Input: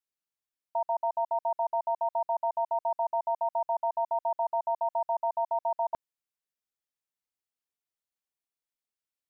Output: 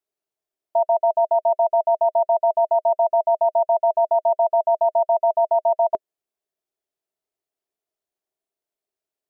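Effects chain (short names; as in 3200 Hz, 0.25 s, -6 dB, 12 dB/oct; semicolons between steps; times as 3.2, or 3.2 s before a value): small resonant body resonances 400/630 Hz, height 17 dB, ringing for 35 ms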